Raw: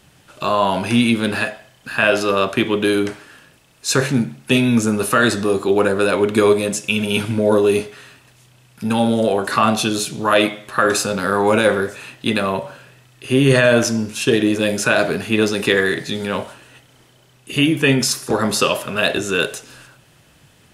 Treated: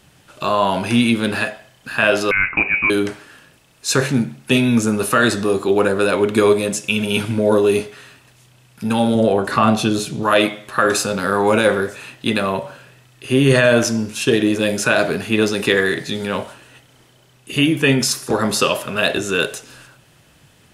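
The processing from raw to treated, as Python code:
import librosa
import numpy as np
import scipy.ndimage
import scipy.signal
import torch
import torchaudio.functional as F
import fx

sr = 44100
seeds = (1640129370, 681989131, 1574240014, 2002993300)

y = fx.freq_invert(x, sr, carrier_hz=2700, at=(2.31, 2.9))
y = fx.tilt_eq(y, sr, slope=-1.5, at=(9.15, 10.23))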